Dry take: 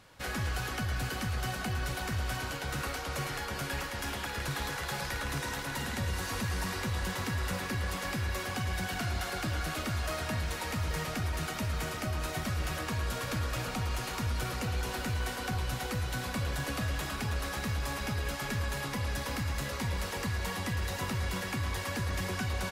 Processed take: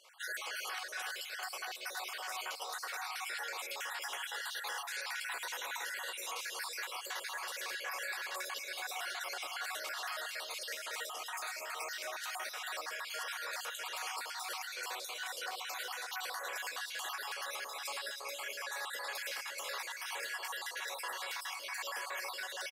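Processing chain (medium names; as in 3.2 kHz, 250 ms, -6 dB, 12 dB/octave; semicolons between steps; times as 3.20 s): random holes in the spectrogram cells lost 46%; Bessel high-pass 790 Hz, order 8; peak limiter -33 dBFS, peak gain reduction 8 dB; on a send: feedback delay 233 ms, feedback 40%, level -18.5 dB; on the sum: trim +2.5 dB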